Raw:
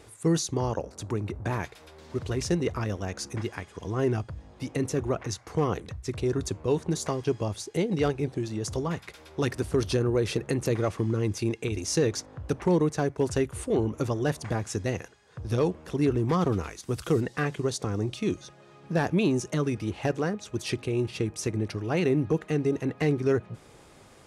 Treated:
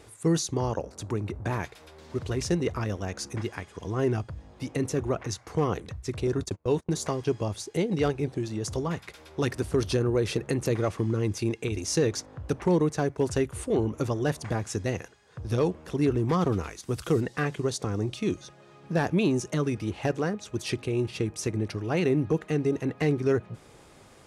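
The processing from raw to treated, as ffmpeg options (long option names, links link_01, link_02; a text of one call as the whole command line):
ffmpeg -i in.wav -filter_complex "[0:a]asettb=1/sr,asplit=3[link_01][link_02][link_03];[link_01]atrim=end=6.274[link_04];[link_02]atrim=start=6.27:end=6.96,asetpts=PTS-STARTPTS,afade=type=in:duration=0.004:curve=qsin,afade=type=out:start_time=0.686:duration=0.004:curve=qsin,agate=range=-29dB:threshold=-34dB:ratio=16:release=100:detection=peak[link_05];[link_03]atrim=start=6.956[link_06];[link_04][link_05]acrossfade=duration=0.004:curve1=hsin:curve2=qsin[link_07];[link_07][link_06]acrossfade=duration=0.004:curve1=qsin:curve2=hsin" out.wav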